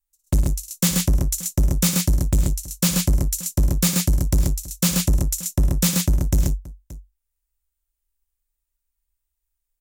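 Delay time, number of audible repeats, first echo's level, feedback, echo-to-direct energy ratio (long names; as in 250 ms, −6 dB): 58 ms, 3, −9.5 dB, repeats not evenly spaced, −1.5 dB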